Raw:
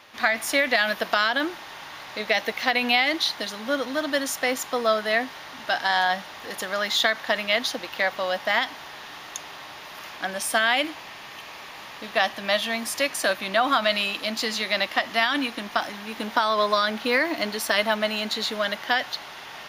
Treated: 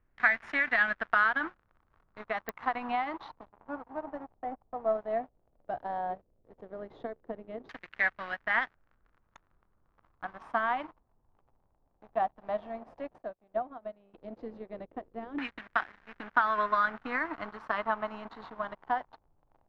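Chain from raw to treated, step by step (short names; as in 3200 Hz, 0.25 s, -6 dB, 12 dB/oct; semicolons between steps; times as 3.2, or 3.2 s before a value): 3.4–4.95 median filter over 15 samples; bell 530 Hz -12 dB 0.39 oct; crossover distortion -32.5 dBFS; added noise brown -64 dBFS; LFO low-pass saw down 0.13 Hz 410–1900 Hz; pops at 2.49, -13 dBFS; 13.18–14.14 upward expander 2.5:1, over -33 dBFS; gain -6 dB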